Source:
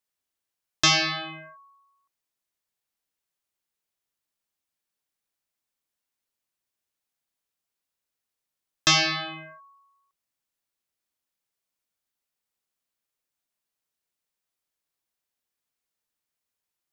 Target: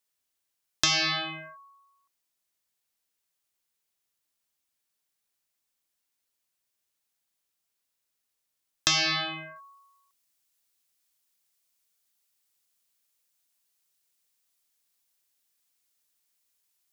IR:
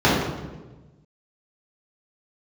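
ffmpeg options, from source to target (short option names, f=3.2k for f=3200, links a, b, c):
-af "asetnsamples=n=441:p=0,asendcmd='9.56 highshelf g 12',highshelf=f=2.6k:g=5.5,acompressor=threshold=-22dB:ratio=6"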